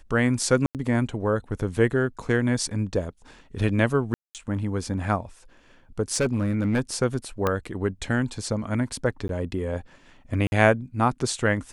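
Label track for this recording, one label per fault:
0.660000	0.750000	gap 88 ms
4.140000	4.350000	gap 0.208 s
6.100000	6.810000	clipped -18 dBFS
7.470000	7.470000	pop -10 dBFS
9.280000	9.290000	gap
10.470000	10.520000	gap 51 ms

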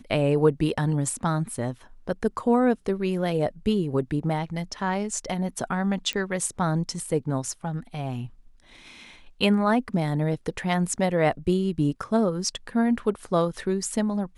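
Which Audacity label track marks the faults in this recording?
6.130000	6.130000	pop -15 dBFS

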